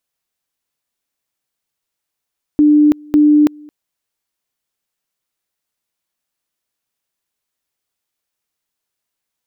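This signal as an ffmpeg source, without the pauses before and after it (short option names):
-f lavfi -i "aevalsrc='pow(10,(-6-28*gte(mod(t,0.55),0.33))/20)*sin(2*PI*298*t)':d=1.1:s=44100"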